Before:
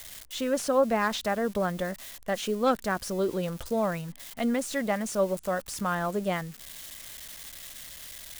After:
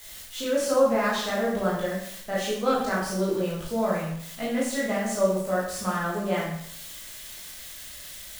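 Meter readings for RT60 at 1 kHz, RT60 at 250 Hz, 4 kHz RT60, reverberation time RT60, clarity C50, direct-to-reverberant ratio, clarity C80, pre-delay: 0.65 s, 0.70 s, 0.65 s, 0.65 s, 1.5 dB, -7.0 dB, 5.0 dB, 16 ms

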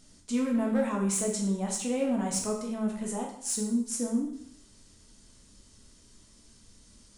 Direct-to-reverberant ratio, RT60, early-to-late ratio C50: -0.5 dB, 0.65 s, 5.5 dB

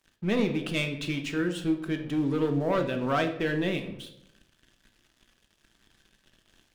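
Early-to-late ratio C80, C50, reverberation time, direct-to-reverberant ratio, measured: 12.5 dB, 9.5 dB, 0.80 s, 5.0 dB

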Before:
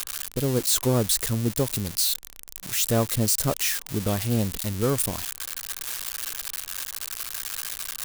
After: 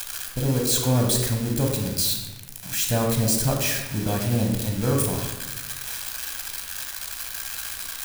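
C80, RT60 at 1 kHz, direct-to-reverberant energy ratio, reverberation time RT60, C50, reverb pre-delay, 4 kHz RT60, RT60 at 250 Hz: 6.0 dB, 1.1 s, 1.0 dB, 1.1 s, 4.0 dB, 15 ms, 0.80 s, 1.5 s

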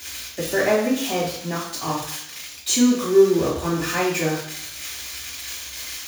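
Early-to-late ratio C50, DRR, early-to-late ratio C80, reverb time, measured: 3.5 dB, -5.5 dB, 7.0 dB, 0.70 s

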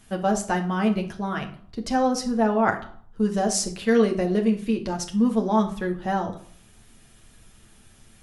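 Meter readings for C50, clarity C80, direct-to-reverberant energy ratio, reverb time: 11.5 dB, 16.0 dB, 2.0 dB, 0.55 s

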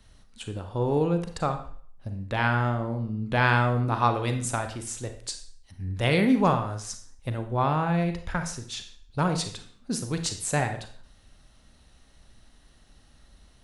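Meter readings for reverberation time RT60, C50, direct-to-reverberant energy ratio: 0.50 s, 9.5 dB, 7.0 dB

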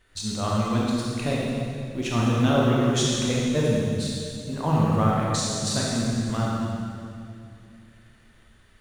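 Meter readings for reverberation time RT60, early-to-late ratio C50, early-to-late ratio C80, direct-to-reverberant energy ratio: 2.5 s, -2.5 dB, -1.0 dB, -5.0 dB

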